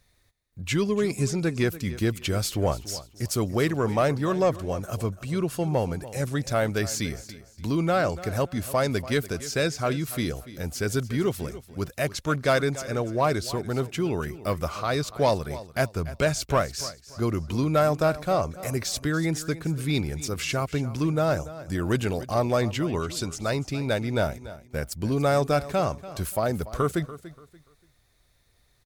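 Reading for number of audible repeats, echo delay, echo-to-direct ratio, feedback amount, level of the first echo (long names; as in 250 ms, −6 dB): 2, 289 ms, −15.5 dB, 28%, −16.0 dB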